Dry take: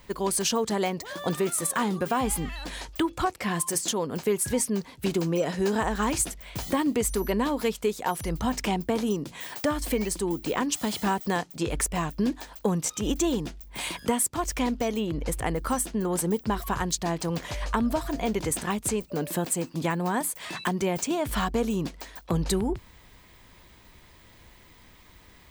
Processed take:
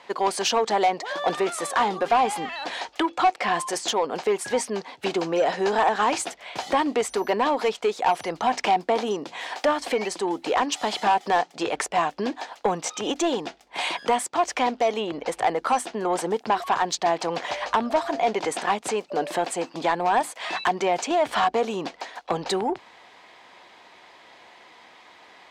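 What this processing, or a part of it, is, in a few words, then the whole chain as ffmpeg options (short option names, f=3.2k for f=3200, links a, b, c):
intercom: -af "highpass=440,lowpass=4.6k,equalizer=f=760:t=o:w=0.45:g=8,asoftclip=type=tanh:threshold=-20dB,volume=7dB"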